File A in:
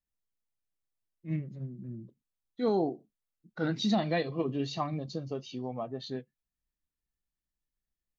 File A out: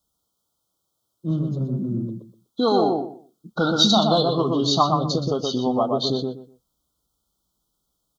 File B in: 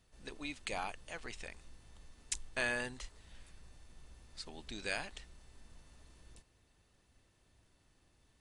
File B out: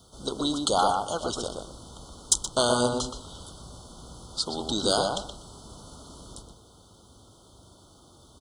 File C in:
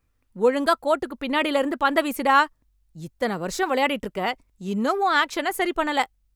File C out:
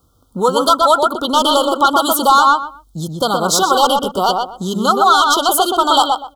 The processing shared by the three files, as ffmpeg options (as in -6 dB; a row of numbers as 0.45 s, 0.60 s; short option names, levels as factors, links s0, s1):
-filter_complex "[0:a]highpass=46,lowshelf=f=130:g=-6,acrossover=split=930[s0][s1];[s0]acompressor=threshold=0.01:ratio=4[s2];[s2][s1]amix=inputs=2:normalize=0,asoftclip=type=tanh:threshold=0.119,asuperstop=centerf=2100:order=20:qfactor=1.3,asplit=2[s3][s4];[s4]adelay=123,lowpass=f=2100:p=1,volume=0.708,asplit=2[s5][s6];[s6]adelay=123,lowpass=f=2100:p=1,volume=0.22,asplit=2[s7][s8];[s8]adelay=123,lowpass=f=2100:p=1,volume=0.22[s9];[s5][s7][s9]amix=inputs=3:normalize=0[s10];[s3][s10]amix=inputs=2:normalize=0,alimiter=level_in=9.44:limit=0.891:release=50:level=0:latency=1,volume=0.891"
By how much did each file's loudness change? +12.0 LU, +14.5 LU, +9.5 LU